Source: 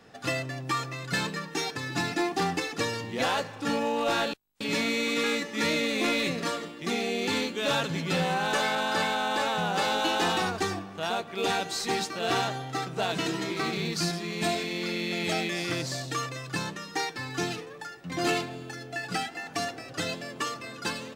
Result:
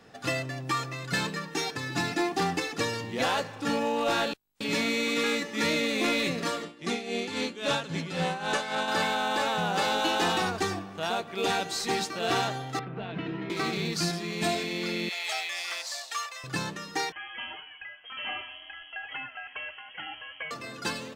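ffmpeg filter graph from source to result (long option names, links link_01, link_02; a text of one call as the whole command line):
ffmpeg -i in.wav -filter_complex "[0:a]asettb=1/sr,asplit=3[link_01][link_02][link_03];[link_01]atrim=end=6.634[link_04];[link_02]atrim=start=6.63:end=8.88,asetpts=PTS-STARTPTS,afade=type=in:duration=0.004:curve=qsin,afade=type=out:start_time=2.246:duration=0.004:curve=qsin,lowpass=frequency=11000:width=0.5412,lowpass=frequency=11000:width=1.3066,tremolo=f=3.7:d=0.67[link_05];[link_03]atrim=start=8.876[link_06];[link_04][link_05]acrossfade=duration=0.004:curve1=hsin:curve2=qsin[link_07];[link_07][link_06]acrossfade=duration=0.004:curve1=qsin:curve2=hsin,asettb=1/sr,asplit=3[link_08][link_09][link_10];[link_08]atrim=end=12.794[link_11];[link_09]atrim=start=12.79:end=13.5,asetpts=PTS-STARTPTS,afade=type=in:duration=0.004:curve=qsin,afade=type=out:start_time=0.706:duration=0.004:curve=qsin,lowpass=frequency=2500:width=0.5412,lowpass=frequency=2500:width=1.3066,acrossover=split=300|3000[link_12][link_13][link_14];[link_13]acompressor=threshold=-38dB:ratio=6:attack=3.2:release=140:knee=2.83:detection=peak[link_15];[link_12][link_15][link_14]amix=inputs=3:normalize=0[link_16];[link_10]atrim=start=13.496[link_17];[link_11][link_16]acrossfade=duration=0.004:curve1=hsin:curve2=qsin[link_18];[link_18][link_17]acrossfade=duration=0.004:curve1=qsin:curve2=hsin,asettb=1/sr,asplit=3[link_19][link_20][link_21];[link_19]atrim=end=15.094[link_22];[link_20]atrim=start=15.09:end=16.44,asetpts=PTS-STARTPTS,afade=type=in:duration=0.004:curve=qsin,afade=type=out:start_time=1.346:duration=0.004:curve=qsin,highpass=frequency=760:width=0.5412,highpass=frequency=760:width=1.3066,equalizer=frequency=1500:width=3.5:gain=-3.5,acrusher=bits=8:mode=log:mix=0:aa=0.000001[link_23];[link_21]atrim=start=16.436[link_24];[link_22][link_23]acrossfade=duration=0.004:curve1=hsin:curve2=qsin[link_25];[link_25][link_24]acrossfade=duration=0.004:curve1=qsin:curve2=hsin,asettb=1/sr,asplit=3[link_26][link_27][link_28];[link_26]atrim=end=17.124[link_29];[link_27]atrim=start=17.12:end=20.51,asetpts=PTS-STARTPTS,afade=type=in:duration=0.004:curve=qsin,afade=type=out:start_time=3.386:duration=0.004:curve=qsin,lowshelf=frequency=490:gain=-10.5,acompressor=threshold=-37dB:ratio=1.5:attack=3.2:release=140:knee=1:detection=peak,lowpass=frequency=2900:width_type=q:width=0.5098,lowpass=frequency=2900:width_type=q:width=0.6013,lowpass=frequency=2900:width_type=q:width=0.9,lowpass=frequency=2900:width_type=q:width=2.563,afreqshift=-3400[link_30];[link_28]atrim=start=20.506[link_31];[link_29][link_30]acrossfade=duration=0.004:curve1=hsin:curve2=qsin[link_32];[link_32][link_31]acrossfade=duration=0.004:curve1=qsin:curve2=hsin" out.wav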